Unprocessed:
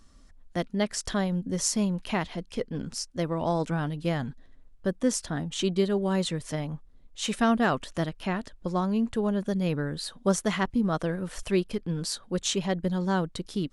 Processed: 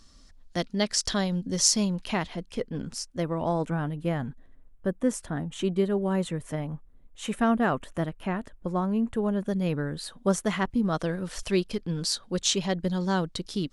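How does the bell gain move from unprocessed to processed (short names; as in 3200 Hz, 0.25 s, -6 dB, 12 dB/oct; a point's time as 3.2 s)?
bell 4800 Hz 1.2 oct
1.73 s +9.5 dB
2.35 s -1.5 dB
3.03 s -1.5 dB
3.82 s -12.5 dB
8.98 s -12.5 dB
9.62 s -3.5 dB
10.63 s -3.5 dB
11.07 s +5.5 dB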